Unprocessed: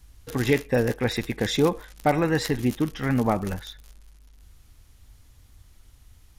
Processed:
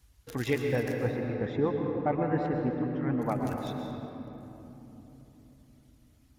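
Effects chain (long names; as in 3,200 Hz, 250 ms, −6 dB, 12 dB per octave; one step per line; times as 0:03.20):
stylus tracing distortion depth 0.023 ms
high-pass filter 49 Hz
reverb reduction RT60 1.6 s
0:00.96–0:03.22: low-pass filter 1,400 Hz 12 dB per octave
convolution reverb RT60 3.6 s, pre-delay 112 ms, DRR 1.5 dB
level −7 dB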